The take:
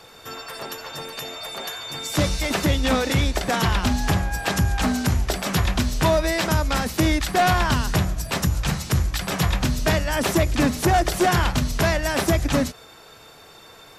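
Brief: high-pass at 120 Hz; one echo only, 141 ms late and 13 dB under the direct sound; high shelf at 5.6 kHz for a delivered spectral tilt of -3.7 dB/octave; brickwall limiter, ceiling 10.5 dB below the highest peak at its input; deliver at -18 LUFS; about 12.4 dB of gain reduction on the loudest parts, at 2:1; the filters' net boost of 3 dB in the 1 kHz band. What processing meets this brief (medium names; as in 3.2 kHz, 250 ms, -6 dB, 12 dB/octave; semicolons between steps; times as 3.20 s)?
high-pass 120 Hz; peaking EQ 1 kHz +4 dB; treble shelf 5.6 kHz +6 dB; compression 2:1, threshold -37 dBFS; peak limiter -27 dBFS; delay 141 ms -13 dB; trim +18 dB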